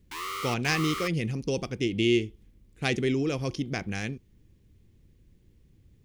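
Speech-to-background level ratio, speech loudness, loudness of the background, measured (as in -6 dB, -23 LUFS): 6.0 dB, -29.0 LUFS, -35.0 LUFS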